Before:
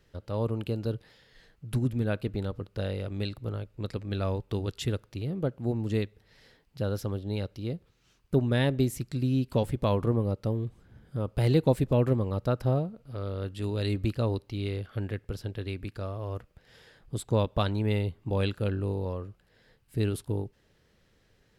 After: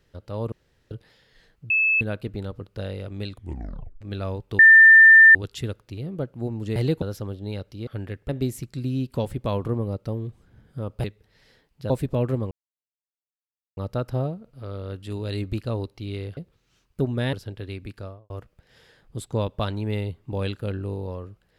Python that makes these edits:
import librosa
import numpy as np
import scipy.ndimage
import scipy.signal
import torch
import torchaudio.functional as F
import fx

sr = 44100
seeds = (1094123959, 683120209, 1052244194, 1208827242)

y = fx.studio_fade_out(x, sr, start_s=15.95, length_s=0.33)
y = fx.edit(y, sr, fx.room_tone_fill(start_s=0.52, length_s=0.39),
    fx.bleep(start_s=1.7, length_s=0.31, hz=2610.0, db=-17.0),
    fx.tape_stop(start_s=3.29, length_s=0.72),
    fx.insert_tone(at_s=4.59, length_s=0.76, hz=1790.0, db=-7.0),
    fx.swap(start_s=6.0, length_s=0.86, other_s=11.42, other_length_s=0.26),
    fx.swap(start_s=7.71, length_s=0.96, other_s=14.89, other_length_s=0.42),
    fx.insert_silence(at_s=12.29, length_s=1.26), tone=tone)